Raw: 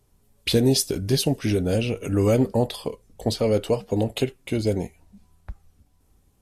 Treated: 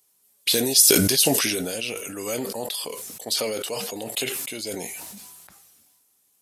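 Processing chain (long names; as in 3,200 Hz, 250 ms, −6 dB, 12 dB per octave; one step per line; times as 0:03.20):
high-pass filter 140 Hz 12 dB per octave
spectral tilt +4.5 dB per octave
level that may fall only so fast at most 26 dB per second
level −5.5 dB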